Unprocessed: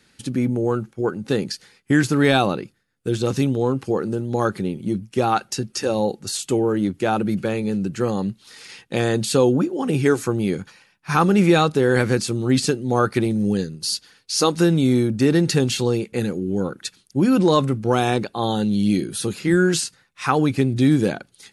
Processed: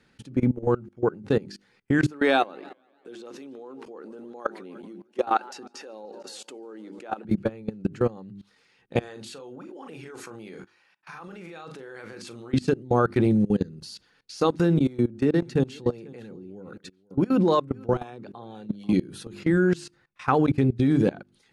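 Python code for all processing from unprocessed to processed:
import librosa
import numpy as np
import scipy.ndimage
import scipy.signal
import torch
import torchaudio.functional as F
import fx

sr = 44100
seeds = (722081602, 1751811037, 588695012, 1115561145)

y = fx.chain(x, sr, fx.highpass(hz=240.0, slope=24),
    fx.low_shelf(hz=340.0, db=-8.0),
    fx.echo_warbled(ms=149, feedback_pct=61, rate_hz=2.8, cents=164, wet_db=-21.0), at=(2.07, 7.25))
y = fx.chain(y, sr, fx.highpass(hz=1000.0, slope=6),
    fx.over_compress(threshold_db=-30.0, ratio=-1.0),
    fx.doubler(ms=37.0, db=-9.0), at=(9.0, 12.54))
y = fx.chain(y, sr, fx.highpass(hz=110.0, slope=6),
    fx.harmonic_tremolo(hz=3.8, depth_pct=50, crossover_hz=480.0),
    fx.echo_single(ms=487, db=-17.5), at=(14.78, 18.93))
y = fx.lowpass(y, sr, hz=1600.0, slope=6)
y = fx.hum_notches(y, sr, base_hz=50, count=8)
y = fx.level_steps(y, sr, step_db=22)
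y = y * librosa.db_to_amplitude(2.5)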